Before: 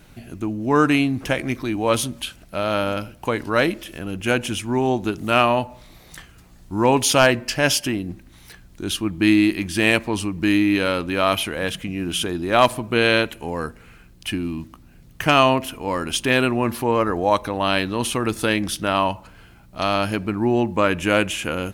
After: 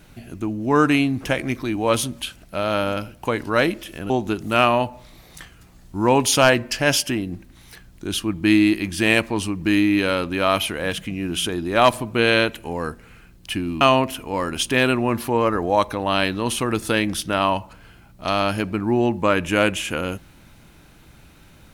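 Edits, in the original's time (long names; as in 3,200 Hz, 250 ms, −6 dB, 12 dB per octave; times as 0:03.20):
0:04.10–0:04.87: remove
0:14.58–0:15.35: remove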